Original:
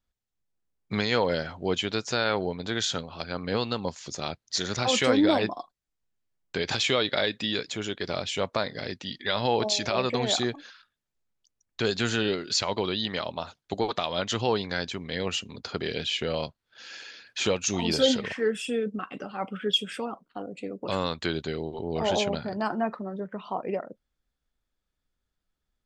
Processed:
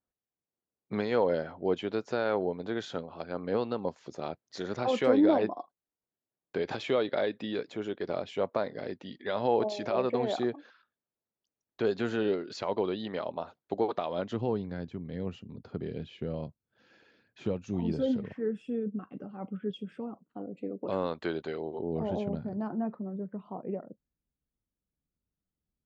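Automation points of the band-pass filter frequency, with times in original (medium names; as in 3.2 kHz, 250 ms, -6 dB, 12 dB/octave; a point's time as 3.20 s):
band-pass filter, Q 0.72
14.06 s 440 Hz
14.61 s 150 Hz
20.12 s 150 Hz
21.58 s 820 Hz
22.06 s 160 Hz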